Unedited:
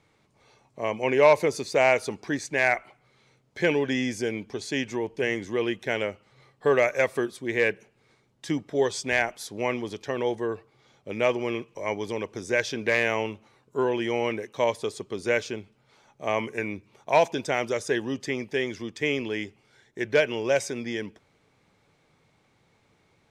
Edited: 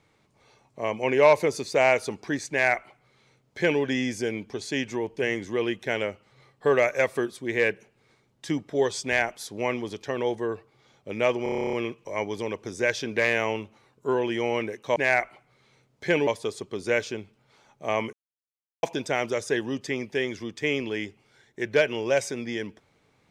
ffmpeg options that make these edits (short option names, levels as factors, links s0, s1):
-filter_complex "[0:a]asplit=15[s0][s1][s2][s3][s4][s5][s6][s7][s8][s9][s10][s11][s12][s13][s14];[s0]atrim=end=11.462[s15];[s1]atrim=start=11.428:end=11.462[s16];[s2]atrim=start=11.428:end=11.462[s17];[s3]atrim=start=11.428:end=11.462[s18];[s4]atrim=start=11.428:end=11.462[s19];[s5]atrim=start=11.428:end=11.462[s20];[s6]atrim=start=11.428:end=11.462[s21];[s7]atrim=start=11.428:end=11.462[s22];[s8]atrim=start=11.428:end=11.462[s23];[s9]atrim=start=11.428:end=11.462[s24];[s10]atrim=start=11.428:end=14.662[s25];[s11]atrim=start=2.498:end=3.812[s26];[s12]atrim=start=14.658:end=16.52,asetpts=PTS-STARTPTS,afade=t=out:st=1.858:d=0.004:c=hsin[s27];[s13]atrim=start=16.52:end=17.22,asetpts=PTS-STARTPTS,volume=0[s28];[s14]atrim=start=17.22,asetpts=PTS-STARTPTS,afade=t=in:d=0.004:c=hsin[s29];[s15][s16]acrossfade=d=0.004:c1=hsin:c2=hsin[s30];[s30][s17]acrossfade=d=0.004:c1=hsin:c2=hsin[s31];[s31][s18]acrossfade=d=0.004:c1=hsin:c2=hsin[s32];[s32][s19]acrossfade=d=0.004:c1=hsin:c2=hsin[s33];[s33][s20]acrossfade=d=0.004:c1=hsin:c2=hsin[s34];[s34][s21]acrossfade=d=0.004:c1=hsin:c2=hsin[s35];[s35][s22]acrossfade=d=0.004:c1=hsin:c2=hsin[s36];[s36][s23]acrossfade=d=0.004:c1=hsin:c2=hsin[s37];[s37][s24]acrossfade=d=0.004:c1=hsin:c2=hsin[s38];[s38][s25]acrossfade=d=0.004:c1=hsin:c2=hsin[s39];[s39][s26]acrossfade=d=0.004:c1=hsin:c2=hsin[s40];[s27][s28][s29]concat=n=3:v=0:a=1[s41];[s40][s41]acrossfade=d=0.004:c1=hsin:c2=hsin"